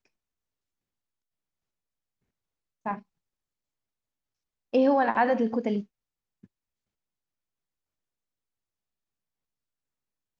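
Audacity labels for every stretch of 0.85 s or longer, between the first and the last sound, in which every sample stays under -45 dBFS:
2.990000	4.730000	silence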